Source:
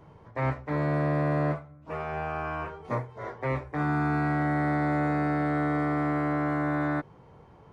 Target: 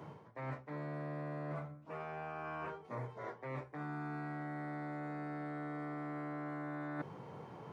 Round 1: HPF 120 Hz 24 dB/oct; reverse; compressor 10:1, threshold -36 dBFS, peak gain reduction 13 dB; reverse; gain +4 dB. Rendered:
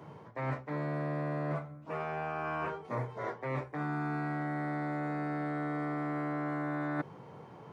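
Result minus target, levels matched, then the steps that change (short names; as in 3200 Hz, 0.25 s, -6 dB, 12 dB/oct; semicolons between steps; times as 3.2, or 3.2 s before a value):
compressor: peak gain reduction -7.5 dB
change: compressor 10:1, threshold -44.5 dBFS, peak gain reduction 20.5 dB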